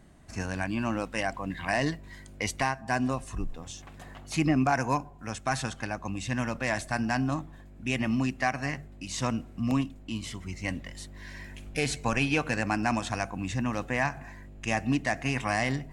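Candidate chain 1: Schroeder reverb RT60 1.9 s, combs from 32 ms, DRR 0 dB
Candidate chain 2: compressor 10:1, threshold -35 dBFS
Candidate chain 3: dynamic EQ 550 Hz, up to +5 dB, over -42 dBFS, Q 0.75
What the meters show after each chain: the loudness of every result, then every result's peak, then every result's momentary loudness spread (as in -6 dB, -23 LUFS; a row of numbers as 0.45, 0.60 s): -27.5, -40.5, -28.0 LUFS; -9.5, -19.5, -11.0 dBFS; 10, 5, 16 LU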